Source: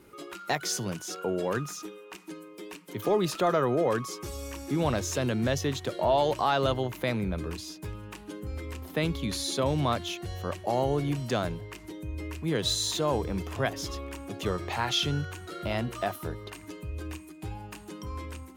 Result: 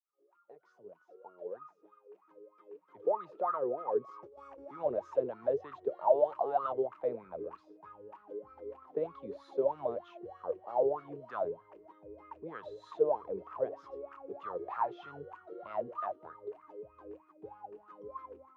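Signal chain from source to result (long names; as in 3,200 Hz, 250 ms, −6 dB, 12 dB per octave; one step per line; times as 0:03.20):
fade in at the beginning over 4.68 s
LFO wah 3.2 Hz 410–1,300 Hz, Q 13
0:03.99–0:04.65: compressor whose output falls as the input rises −59 dBFS, ratio −1
low-pass filter 1,700 Hz 6 dB per octave
level +9 dB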